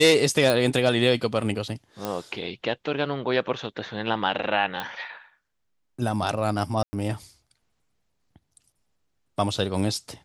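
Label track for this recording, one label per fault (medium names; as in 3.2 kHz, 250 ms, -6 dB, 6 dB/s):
0.500000	0.500000	pop
2.050000	2.050000	pop -13 dBFS
4.800000	4.800000	pop -15 dBFS
6.830000	6.930000	dropout 100 ms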